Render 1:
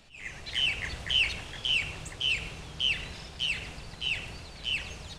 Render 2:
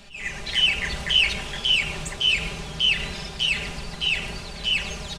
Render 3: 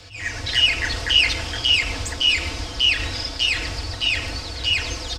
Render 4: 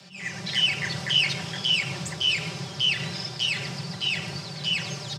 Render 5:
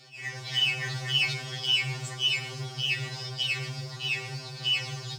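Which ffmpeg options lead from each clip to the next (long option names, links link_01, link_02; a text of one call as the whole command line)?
ffmpeg -i in.wav -filter_complex "[0:a]asplit=2[link_01][link_02];[link_02]alimiter=level_in=2.5dB:limit=-24dB:level=0:latency=1:release=117,volume=-2.5dB,volume=-2dB[link_03];[link_01][link_03]amix=inputs=2:normalize=0,aecho=1:1:5:0.65,volume=3dB" out.wav
ffmpeg -i in.wav -af "afreqshift=-110,equalizer=frequency=2500:width_type=o:width=0.33:gain=-4,equalizer=frequency=5000:width_type=o:width=0.33:gain=9,equalizer=frequency=10000:width_type=o:width=0.33:gain=-5,volume=4dB" out.wav
ffmpeg -i in.wav -af "afreqshift=86,volume=-5.5dB" out.wav
ffmpeg -i in.wav -filter_complex "[0:a]asplit=2[link_01][link_02];[link_02]acrusher=bits=5:mode=log:mix=0:aa=0.000001,volume=-6dB[link_03];[link_01][link_03]amix=inputs=2:normalize=0,afftfilt=real='re*2.45*eq(mod(b,6),0)':imag='im*2.45*eq(mod(b,6),0)':win_size=2048:overlap=0.75,volume=-5dB" out.wav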